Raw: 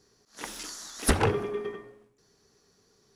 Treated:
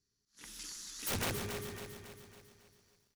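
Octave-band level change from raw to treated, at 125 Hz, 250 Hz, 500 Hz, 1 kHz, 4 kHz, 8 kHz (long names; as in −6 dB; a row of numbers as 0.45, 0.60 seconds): −11.0, −11.5, −14.0, −12.5, −4.0, −5.5 decibels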